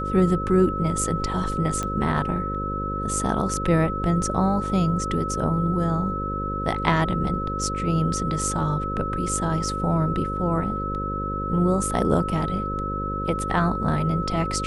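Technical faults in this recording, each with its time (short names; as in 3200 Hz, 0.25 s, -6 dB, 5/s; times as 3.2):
buzz 50 Hz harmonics 11 -30 dBFS
tone 1300 Hz -28 dBFS
1.83 pop -14 dBFS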